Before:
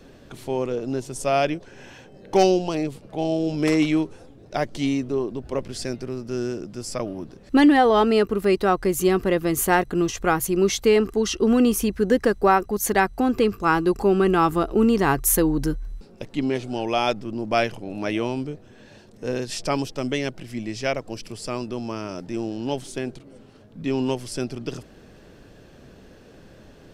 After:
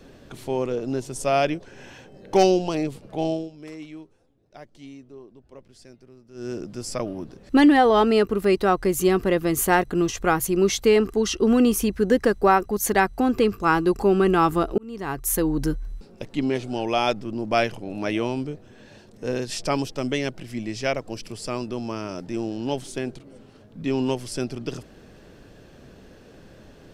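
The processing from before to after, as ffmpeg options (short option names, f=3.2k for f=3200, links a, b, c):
-filter_complex "[0:a]asplit=4[a][b][c][d];[a]atrim=end=3.5,asetpts=PTS-STARTPTS,afade=t=out:st=3.27:d=0.23:silence=0.112202[e];[b]atrim=start=3.5:end=6.34,asetpts=PTS-STARTPTS,volume=-19dB[f];[c]atrim=start=6.34:end=14.78,asetpts=PTS-STARTPTS,afade=t=in:d=0.23:silence=0.112202,afade=t=out:st=8.436:d=0.004:c=hsin[g];[d]atrim=start=14.78,asetpts=PTS-STARTPTS,afade=t=in:d=0.9[h];[e][f][g][h]concat=n=4:v=0:a=1"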